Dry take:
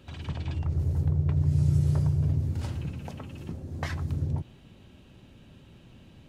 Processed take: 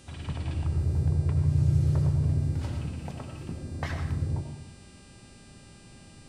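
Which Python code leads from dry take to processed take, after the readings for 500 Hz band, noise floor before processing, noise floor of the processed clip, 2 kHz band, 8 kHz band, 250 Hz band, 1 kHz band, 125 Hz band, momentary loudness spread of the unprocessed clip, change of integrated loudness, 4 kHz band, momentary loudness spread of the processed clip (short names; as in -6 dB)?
+1.5 dB, -54 dBFS, -52 dBFS, +0.5 dB, n/a, -0.5 dB, +1.0 dB, 0.0 dB, 15 LU, 0.0 dB, +0.5 dB, 15 LU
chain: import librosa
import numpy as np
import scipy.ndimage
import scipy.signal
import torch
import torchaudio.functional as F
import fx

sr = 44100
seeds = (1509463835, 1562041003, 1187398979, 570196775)

y = fx.high_shelf(x, sr, hz=5100.0, db=-6.0)
y = fx.dmg_buzz(y, sr, base_hz=400.0, harmonics=25, level_db=-59.0, tilt_db=0, odd_only=False)
y = fx.rev_freeverb(y, sr, rt60_s=0.77, hf_ratio=0.8, predelay_ms=50, drr_db=5.0)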